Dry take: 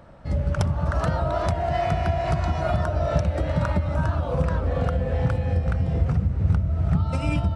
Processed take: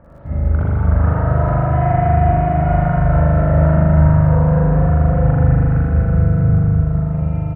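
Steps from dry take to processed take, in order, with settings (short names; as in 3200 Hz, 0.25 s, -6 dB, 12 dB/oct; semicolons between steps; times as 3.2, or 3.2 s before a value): ending faded out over 1.23 s; LPF 2000 Hz 24 dB/oct; low shelf 310 Hz +6 dB; in parallel at -1 dB: compressor, threshold -23 dBFS, peak gain reduction 12.5 dB; on the sum: crackle 36/s -40 dBFS; on a send: feedback echo 0.241 s, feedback 57%, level -5 dB; on the sum: spring tank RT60 3.1 s, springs 39 ms, chirp 40 ms, DRR -8.5 dB; gain -8 dB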